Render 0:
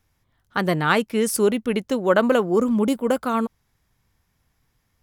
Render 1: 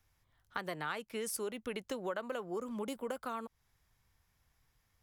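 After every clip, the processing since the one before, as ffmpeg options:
-filter_complex "[0:a]equalizer=f=240:t=o:w=1.8:g=-7,acrossover=split=230|640|2700[s0][s1][s2][s3];[s0]alimiter=level_in=3.98:limit=0.0631:level=0:latency=1,volume=0.251[s4];[s4][s1][s2][s3]amix=inputs=4:normalize=0,acompressor=threshold=0.0251:ratio=5,volume=0.596"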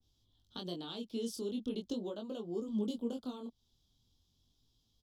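-af "firequalizer=gain_entry='entry(160,0);entry(240,9);entry(500,-4);entry(2000,-25);entry(3300,10);entry(9400,-8)':delay=0.05:min_phase=1,flanger=delay=18:depth=7.9:speed=0.4,adynamicequalizer=threshold=0.00112:dfrequency=1500:dqfactor=0.7:tfrequency=1500:tqfactor=0.7:attack=5:release=100:ratio=0.375:range=2:mode=cutabove:tftype=highshelf,volume=1.33"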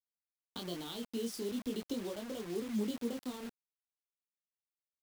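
-af "acrusher=bits=7:mix=0:aa=0.000001"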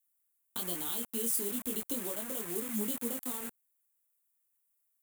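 -filter_complex "[0:a]acrossover=split=860|2800[s0][s1][s2];[s1]acontrast=81[s3];[s0][s3][s2]amix=inputs=3:normalize=0,aexciter=amount=10.4:drive=4.2:freq=7300,volume=0.841"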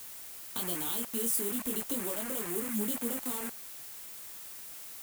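-af "aeval=exprs='val(0)+0.5*0.0112*sgn(val(0))':c=same"

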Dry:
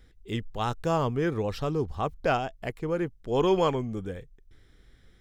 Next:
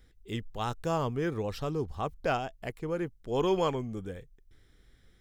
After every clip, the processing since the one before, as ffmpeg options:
-af "highshelf=f=7100:g=5.5,volume=0.631"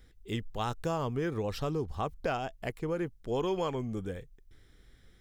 -af "acompressor=threshold=0.0316:ratio=5,volume=1.26"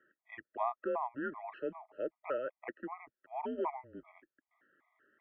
-af "highpass=f=530:t=q:w=0.5412,highpass=f=530:t=q:w=1.307,lowpass=f=2200:t=q:w=0.5176,lowpass=f=2200:t=q:w=0.7071,lowpass=f=2200:t=q:w=1.932,afreqshift=-130,afftfilt=real='re*gt(sin(2*PI*2.6*pts/sr)*(1-2*mod(floor(b*sr/1024/640),2)),0)':imag='im*gt(sin(2*PI*2.6*pts/sr)*(1-2*mod(floor(b*sr/1024/640),2)),0)':win_size=1024:overlap=0.75,volume=1.33"

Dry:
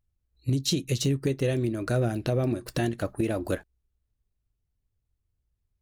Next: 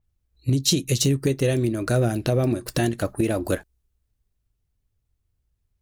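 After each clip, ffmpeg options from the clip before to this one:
-af "adynamicequalizer=threshold=0.00501:dfrequency=4900:dqfactor=0.7:tfrequency=4900:tqfactor=0.7:attack=5:release=100:ratio=0.375:range=3:mode=boostabove:tftype=highshelf,volume=1.68"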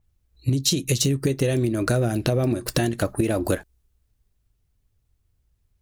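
-af "acompressor=threshold=0.0708:ratio=6,volume=1.78"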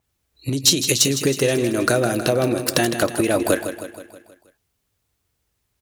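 -filter_complex "[0:a]highpass=f=470:p=1,volume=4.73,asoftclip=hard,volume=0.211,asplit=2[s0][s1];[s1]aecho=0:1:159|318|477|636|795|954:0.316|0.171|0.0922|0.0498|0.0269|0.0145[s2];[s0][s2]amix=inputs=2:normalize=0,volume=2.37"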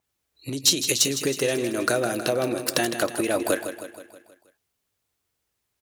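-af "lowshelf=f=160:g=-11.5,volume=0.668"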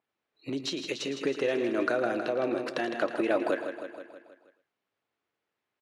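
-af "alimiter=limit=0.2:level=0:latency=1:release=459,highpass=220,lowpass=2500,aecho=1:1:112:0.211"

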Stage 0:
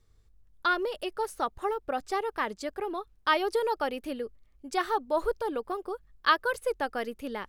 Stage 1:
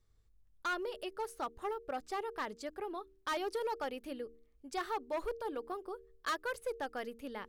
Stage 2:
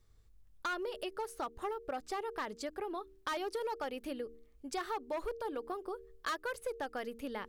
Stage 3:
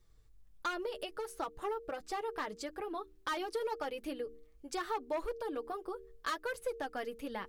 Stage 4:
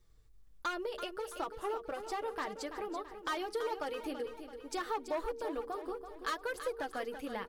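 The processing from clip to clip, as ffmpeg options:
-af "bandreject=f=76.99:t=h:w=4,bandreject=f=153.98:t=h:w=4,bandreject=f=230.97:t=h:w=4,bandreject=f=307.96:t=h:w=4,bandreject=f=384.95:t=h:w=4,bandreject=f=461.94:t=h:w=4,volume=15,asoftclip=hard,volume=0.0668,volume=0.422"
-af "acompressor=threshold=0.00708:ratio=2.5,volume=1.88"
-af "flanger=delay=5.7:depth=1.4:regen=-27:speed=1.5:shape=triangular,volume=1.58"
-af "aecho=1:1:333|666|999|1332|1665:0.316|0.155|0.0759|0.0372|0.0182"

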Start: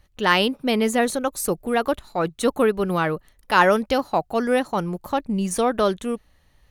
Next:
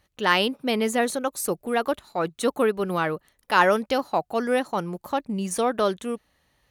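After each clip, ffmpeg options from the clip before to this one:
-af "highpass=f=180:p=1,volume=0.794"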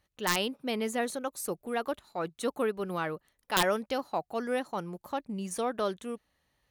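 -af "aeval=exprs='(mod(2.51*val(0)+1,2)-1)/2.51':c=same,volume=0.398"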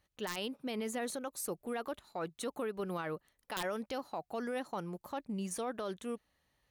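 -af "alimiter=level_in=1.41:limit=0.0631:level=0:latency=1:release=55,volume=0.708,volume=0.794"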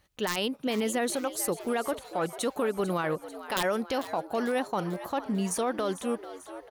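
-filter_complex "[0:a]asplit=7[s0][s1][s2][s3][s4][s5][s6];[s1]adelay=445,afreqshift=91,volume=0.2[s7];[s2]adelay=890,afreqshift=182,volume=0.114[s8];[s3]adelay=1335,afreqshift=273,volume=0.0646[s9];[s4]adelay=1780,afreqshift=364,volume=0.0372[s10];[s5]adelay=2225,afreqshift=455,volume=0.0211[s11];[s6]adelay=2670,afreqshift=546,volume=0.012[s12];[s0][s7][s8][s9][s10][s11][s12]amix=inputs=7:normalize=0,volume=2.82"

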